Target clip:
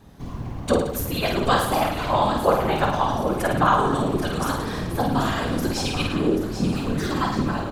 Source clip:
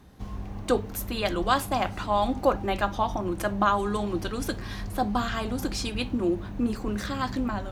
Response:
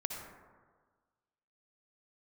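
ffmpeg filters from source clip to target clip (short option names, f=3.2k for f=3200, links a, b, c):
-filter_complex "[0:a]asplit=2[a][b];[b]aecho=0:1:785|1570|2355|3140:0.335|0.127|0.0484|0.0184[c];[a][c]amix=inputs=2:normalize=0,afftfilt=real='hypot(re,im)*cos(2*PI*random(0))':imag='hypot(re,im)*sin(2*PI*random(1))':win_size=512:overlap=0.75,asplit=2[d][e];[e]aecho=0:1:50|107.5|173.6|249.7|337.1:0.631|0.398|0.251|0.158|0.1[f];[d][f]amix=inputs=2:normalize=0,volume=8.5dB"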